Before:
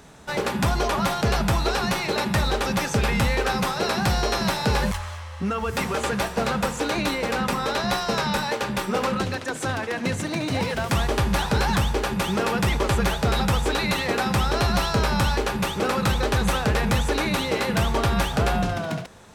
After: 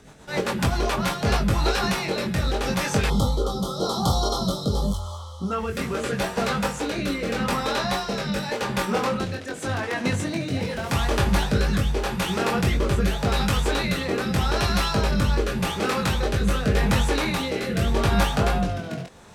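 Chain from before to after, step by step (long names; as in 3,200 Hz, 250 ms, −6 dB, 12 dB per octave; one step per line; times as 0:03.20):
chorus effect 0.6 Hz, delay 20 ms, depth 2.8 ms
rotating-speaker cabinet horn 7.5 Hz, later 0.85 Hz, at 0:00.74
gain on a spectral selection 0:03.09–0:05.52, 1,400–3,000 Hz −29 dB
level +4.5 dB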